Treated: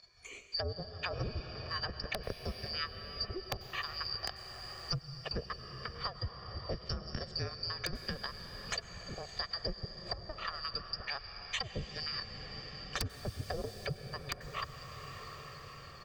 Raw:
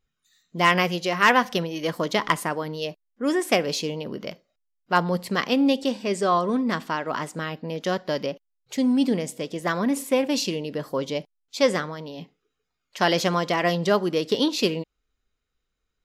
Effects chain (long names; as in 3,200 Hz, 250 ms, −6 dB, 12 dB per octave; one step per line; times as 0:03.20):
band-splitting scrambler in four parts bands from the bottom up 2341
treble cut that deepens with the level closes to 310 Hz, closed at −18 dBFS
low-pass filter 5,800 Hz 12 dB per octave
parametric band 60 Hz +7 dB 1.9 octaves
comb filter 1.7 ms, depth 55%
transient designer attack +3 dB, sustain −11 dB
downward compressor 10 to 1, threshold −29 dBFS, peak gain reduction 13 dB
wrap-around overflow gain 17.5 dB
convolution reverb RT60 4.5 s, pre-delay 87 ms, DRR 10 dB
multiband upward and downward compressor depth 70%
level −3 dB